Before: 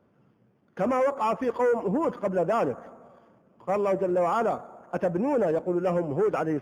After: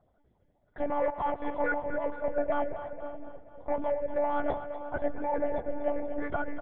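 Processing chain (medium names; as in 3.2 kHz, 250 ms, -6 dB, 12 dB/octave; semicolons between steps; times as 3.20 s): coarse spectral quantiser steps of 30 dB; static phaser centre 1.8 kHz, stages 8; delay 541 ms -19 dB; monotone LPC vocoder at 8 kHz 290 Hz; on a send: two-band feedback delay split 520 Hz, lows 647 ms, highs 241 ms, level -10.5 dB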